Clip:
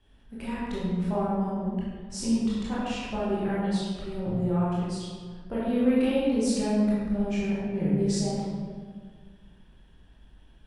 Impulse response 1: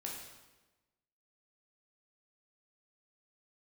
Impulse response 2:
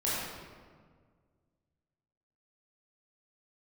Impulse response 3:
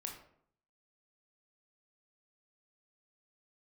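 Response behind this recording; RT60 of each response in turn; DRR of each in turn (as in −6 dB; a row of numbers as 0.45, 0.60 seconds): 2; 1.1, 1.7, 0.65 seconds; −2.5, −9.0, 1.0 decibels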